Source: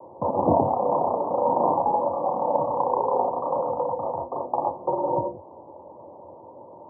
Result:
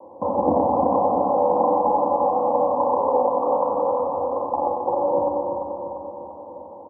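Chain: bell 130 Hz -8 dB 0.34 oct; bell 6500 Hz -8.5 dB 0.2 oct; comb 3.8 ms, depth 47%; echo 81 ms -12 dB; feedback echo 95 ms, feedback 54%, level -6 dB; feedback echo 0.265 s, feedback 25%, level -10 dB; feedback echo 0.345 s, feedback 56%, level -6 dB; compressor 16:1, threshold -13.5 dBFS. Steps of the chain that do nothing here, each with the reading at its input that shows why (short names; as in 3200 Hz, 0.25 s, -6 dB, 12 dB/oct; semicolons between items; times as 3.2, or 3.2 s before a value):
bell 6500 Hz: input band ends at 1200 Hz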